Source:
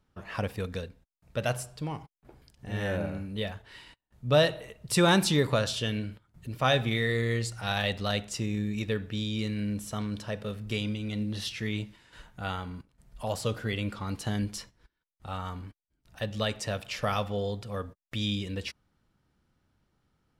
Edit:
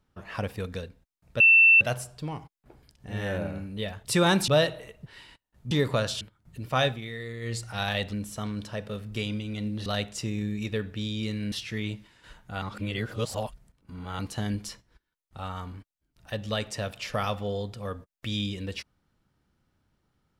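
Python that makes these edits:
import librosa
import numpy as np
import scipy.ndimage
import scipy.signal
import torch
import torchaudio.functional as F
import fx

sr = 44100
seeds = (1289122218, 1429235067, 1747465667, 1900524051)

y = fx.edit(x, sr, fx.insert_tone(at_s=1.4, length_s=0.41, hz=2680.0, db=-13.0),
    fx.swap(start_s=3.64, length_s=0.65, other_s=4.87, other_length_s=0.43),
    fx.cut(start_s=5.8, length_s=0.3),
    fx.fade_down_up(start_s=6.74, length_s=0.7, db=-9.5, fade_s=0.14),
    fx.move(start_s=8.02, length_s=1.66, to_s=11.41),
    fx.reverse_span(start_s=12.51, length_s=1.57), tone=tone)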